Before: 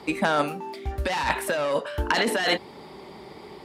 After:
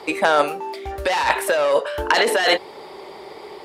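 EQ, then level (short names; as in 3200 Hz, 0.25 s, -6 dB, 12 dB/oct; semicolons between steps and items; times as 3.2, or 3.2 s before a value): resonant low shelf 310 Hz -10 dB, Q 1.5; +5.5 dB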